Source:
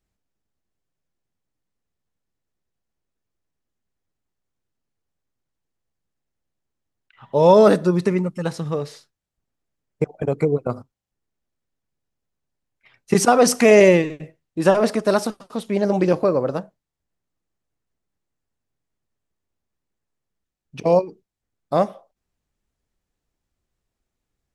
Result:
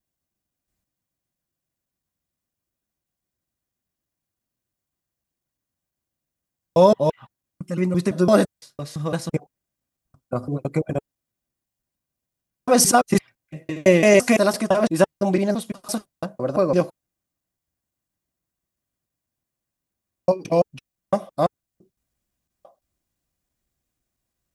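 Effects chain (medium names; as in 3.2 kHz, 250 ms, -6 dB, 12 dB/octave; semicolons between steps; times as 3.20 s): slices played last to first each 169 ms, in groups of 5; treble shelf 8.1 kHz +12 dB; comb of notches 440 Hz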